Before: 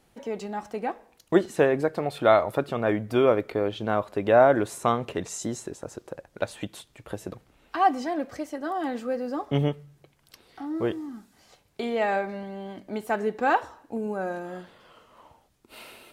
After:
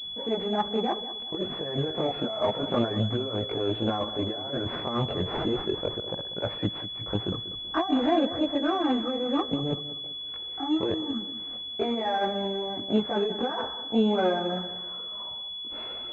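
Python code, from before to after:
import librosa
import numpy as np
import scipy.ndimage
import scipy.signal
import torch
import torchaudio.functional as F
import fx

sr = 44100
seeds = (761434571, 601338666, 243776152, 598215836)

y = fx.over_compress(x, sr, threshold_db=-29.0, ratio=-1.0)
y = fx.chorus_voices(y, sr, voices=2, hz=0.31, base_ms=20, depth_ms=2.6, mix_pct=60)
y = fx.echo_feedback(y, sr, ms=191, feedback_pct=38, wet_db=-14)
y = fx.pwm(y, sr, carrier_hz=3400.0)
y = F.gain(torch.from_numpy(y), 5.0).numpy()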